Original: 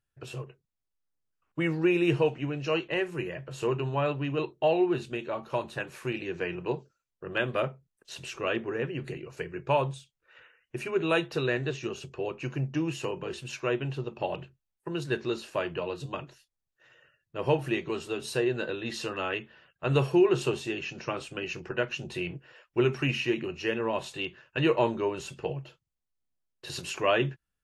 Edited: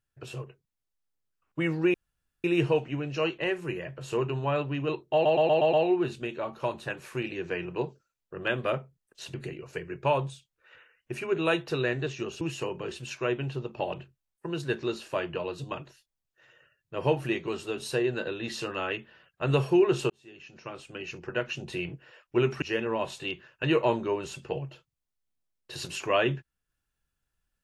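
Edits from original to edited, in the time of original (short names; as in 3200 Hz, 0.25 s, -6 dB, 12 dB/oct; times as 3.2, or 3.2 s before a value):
1.94 insert room tone 0.50 s
4.63 stutter 0.12 s, 6 plays
8.24–8.98 cut
12.05–12.83 cut
20.52–21.96 fade in
23.04–23.56 cut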